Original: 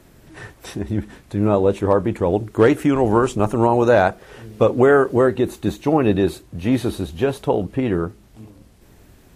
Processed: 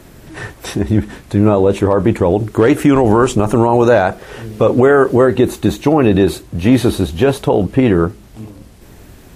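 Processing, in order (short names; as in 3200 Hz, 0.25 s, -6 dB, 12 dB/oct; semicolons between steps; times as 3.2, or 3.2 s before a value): maximiser +10.5 dB; gain -1 dB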